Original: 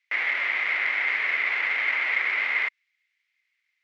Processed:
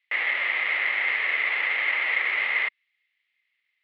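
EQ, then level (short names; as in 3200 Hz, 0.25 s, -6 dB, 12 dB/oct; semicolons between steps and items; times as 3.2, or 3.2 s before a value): speaker cabinet 200–3500 Hz, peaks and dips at 270 Hz -9 dB, 400 Hz -4 dB, 690 Hz -4 dB, 1000 Hz -5 dB, 1500 Hz -9 dB, 2300 Hz -6 dB; +5.5 dB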